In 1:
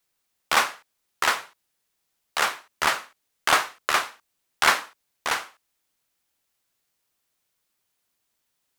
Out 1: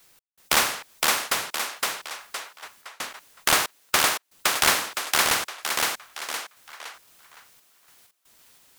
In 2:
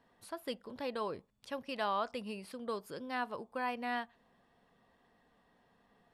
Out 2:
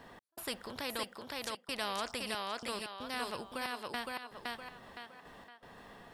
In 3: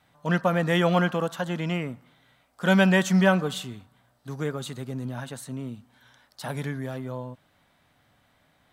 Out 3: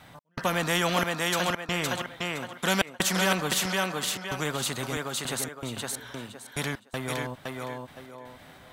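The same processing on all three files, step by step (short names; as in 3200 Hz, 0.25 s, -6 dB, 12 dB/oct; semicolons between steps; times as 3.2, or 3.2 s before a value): step gate "xx..xxxxxxx..." 160 bpm -60 dB; thinning echo 0.514 s, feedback 21%, high-pass 300 Hz, level -3 dB; spectral compressor 2:1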